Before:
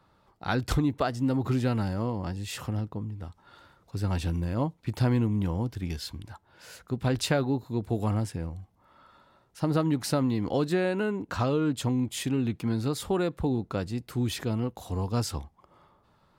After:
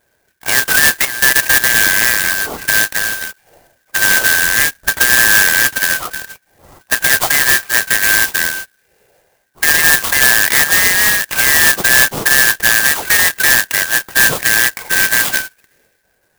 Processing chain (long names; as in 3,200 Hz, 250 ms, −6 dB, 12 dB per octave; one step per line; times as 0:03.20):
band-splitting scrambler in four parts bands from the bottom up 3142
0:00.99–0:01.64: output level in coarse steps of 13 dB
0:04.35–0:04.92: RIAA equalisation playback
low-pass that shuts in the quiet parts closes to 680 Hz, open at −23 dBFS
boost into a limiter +18.5 dB
converter with an unsteady clock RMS 0.081 ms
level −1 dB